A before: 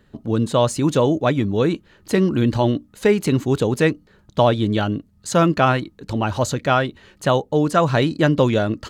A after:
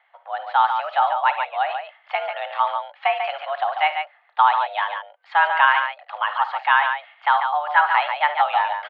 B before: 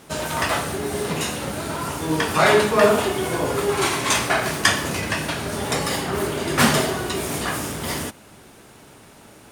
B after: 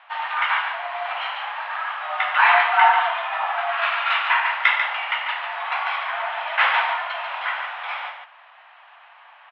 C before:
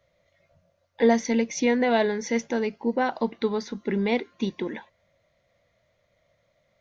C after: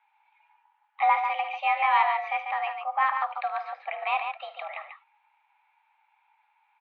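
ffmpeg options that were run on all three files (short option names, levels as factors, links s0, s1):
-af "highpass=f=490:t=q:w=0.5412,highpass=f=490:t=q:w=1.307,lowpass=f=2800:t=q:w=0.5176,lowpass=f=2800:t=q:w=0.7071,lowpass=f=2800:t=q:w=1.932,afreqshift=290,aecho=1:1:52|75|143:0.178|0.168|0.473,volume=1.19"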